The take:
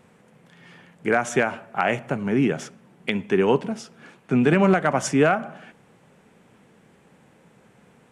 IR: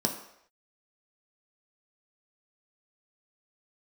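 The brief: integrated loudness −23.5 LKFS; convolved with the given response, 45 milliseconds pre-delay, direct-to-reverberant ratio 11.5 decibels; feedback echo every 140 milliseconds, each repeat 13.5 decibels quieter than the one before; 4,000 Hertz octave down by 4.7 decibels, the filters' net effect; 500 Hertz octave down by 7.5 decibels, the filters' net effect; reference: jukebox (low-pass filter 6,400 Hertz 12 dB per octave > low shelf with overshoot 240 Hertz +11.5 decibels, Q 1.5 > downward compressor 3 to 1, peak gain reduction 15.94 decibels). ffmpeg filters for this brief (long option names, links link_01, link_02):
-filter_complex "[0:a]equalizer=frequency=500:width_type=o:gain=-7,equalizer=frequency=4000:width_type=o:gain=-6.5,aecho=1:1:140|280:0.211|0.0444,asplit=2[link_01][link_02];[1:a]atrim=start_sample=2205,adelay=45[link_03];[link_02][link_03]afir=irnorm=-1:irlink=0,volume=-19dB[link_04];[link_01][link_04]amix=inputs=2:normalize=0,lowpass=6400,lowshelf=frequency=240:width_type=q:width=1.5:gain=11.5,acompressor=threshold=-26dB:ratio=3,volume=4dB"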